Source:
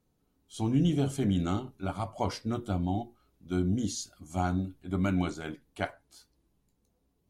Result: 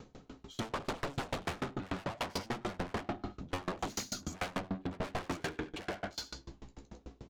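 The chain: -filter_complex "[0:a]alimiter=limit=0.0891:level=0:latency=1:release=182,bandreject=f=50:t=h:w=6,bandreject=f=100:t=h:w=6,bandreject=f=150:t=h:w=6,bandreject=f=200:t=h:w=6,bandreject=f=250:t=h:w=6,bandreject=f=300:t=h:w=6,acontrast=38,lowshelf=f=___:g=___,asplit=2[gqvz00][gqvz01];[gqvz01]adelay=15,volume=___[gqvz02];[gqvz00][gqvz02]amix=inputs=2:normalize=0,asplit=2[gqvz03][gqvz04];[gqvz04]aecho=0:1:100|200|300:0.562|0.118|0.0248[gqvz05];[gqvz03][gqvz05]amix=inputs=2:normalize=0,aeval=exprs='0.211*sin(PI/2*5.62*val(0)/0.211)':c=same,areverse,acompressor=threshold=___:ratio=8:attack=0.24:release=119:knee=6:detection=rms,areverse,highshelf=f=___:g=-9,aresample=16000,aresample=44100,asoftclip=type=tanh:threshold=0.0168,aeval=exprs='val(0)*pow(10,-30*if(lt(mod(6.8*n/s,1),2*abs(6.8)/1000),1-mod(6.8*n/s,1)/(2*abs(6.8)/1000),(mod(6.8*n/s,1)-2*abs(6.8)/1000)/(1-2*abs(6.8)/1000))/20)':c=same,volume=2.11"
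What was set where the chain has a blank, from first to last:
140, -5, 0.316, 0.0447, 5700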